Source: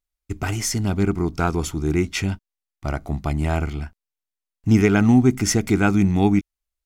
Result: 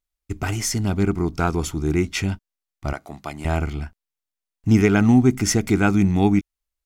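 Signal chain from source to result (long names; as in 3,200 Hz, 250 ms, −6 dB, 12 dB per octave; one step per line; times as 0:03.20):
0:02.93–0:03.45: high-pass filter 680 Hz 6 dB per octave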